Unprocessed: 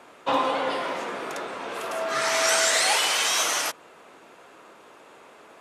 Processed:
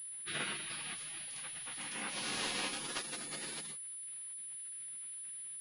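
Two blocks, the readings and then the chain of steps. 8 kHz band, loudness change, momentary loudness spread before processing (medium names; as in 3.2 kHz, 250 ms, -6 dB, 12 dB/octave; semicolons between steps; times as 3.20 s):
-12.0 dB, -16.0 dB, 14 LU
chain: chord resonator D3 sus4, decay 0.21 s; spectral gate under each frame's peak -20 dB weak; class-D stage that switches slowly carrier 10 kHz; trim +12 dB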